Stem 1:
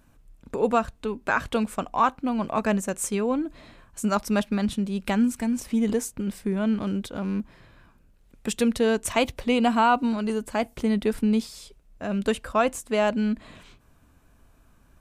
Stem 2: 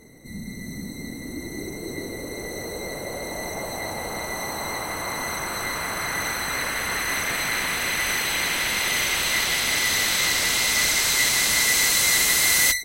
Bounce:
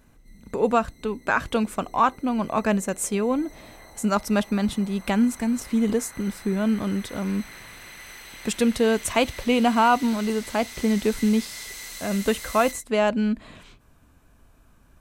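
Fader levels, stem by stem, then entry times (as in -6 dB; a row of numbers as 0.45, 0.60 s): +1.5, -18.5 dB; 0.00, 0.00 s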